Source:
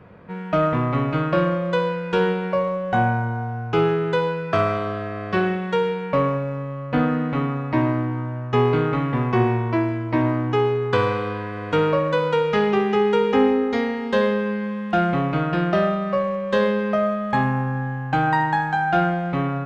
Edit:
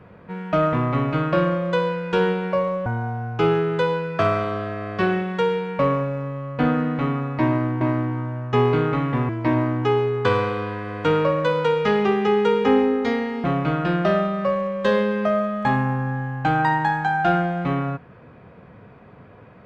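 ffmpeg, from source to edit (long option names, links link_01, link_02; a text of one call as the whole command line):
ffmpeg -i in.wav -filter_complex "[0:a]asplit=5[link_01][link_02][link_03][link_04][link_05];[link_01]atrim=end=2.862[link_06];[link_02]atrim=start=3.198:end=8.152[link_07];[link_03]atrim=start=7.808:end=9.292[link_08];[link_04]atrim=start=9.968:end=14.122[link_09];[link_05]atrim=start=15.118[link_10];[link_06][link_07]acrossfade=duration=0.004:curve1=hsin:curve2=hsin[link_11];[link_11][link_08]acrossfade=duration=0.004:curve1=hsin:curve2=hsin[link_12];[link_12][link_09]acrossfade=duration=0.004:curve1=hsin:curve2=hsin[link_13];[link_13][link_10]acrossfade=duration=0.004:curve1=hsin:curve2=hsin" out.wav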